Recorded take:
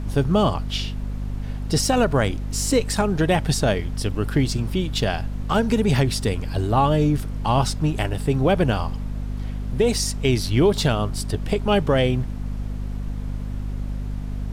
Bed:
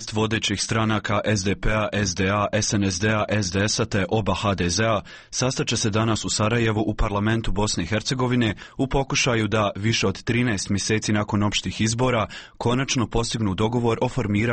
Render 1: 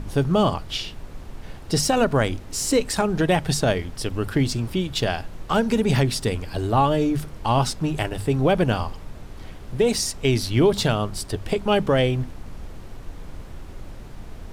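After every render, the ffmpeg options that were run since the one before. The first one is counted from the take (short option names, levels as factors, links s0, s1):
-af "bandreject=f=50:t=h:w=6,bandreject=f=100:t=h:w=6,bandreject=f=150:t=h:w=6,bandreject=f=200:t=h:w=6,bandreject=f=250:t=h:w=6"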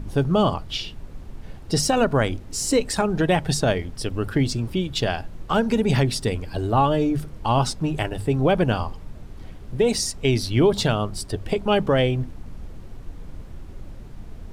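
-af "afftdn=nr=6:nf=-39"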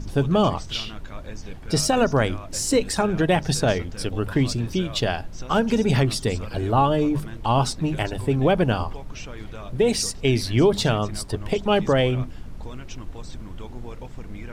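-filter_complex "[1:a]volume=0.119[s0];[0:a][s0]amix=inputs=2:normalize=0"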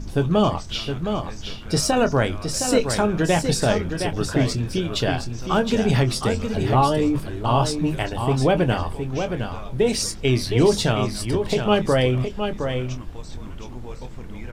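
-filter_complex "[0:a]asplit=2[s0][s1];[s1]adelay=24,volume=0.316[s2];[s0][s2]amix=inputs=2:normalize=0,asplit=2[s3][s4];[s4]aecho=0:1:715:0.447[s5];[s3][s5]amix=inputs=2:normalize=0"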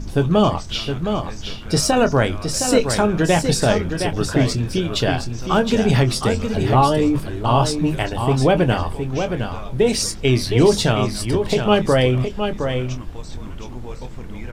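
-af "volume=1.41"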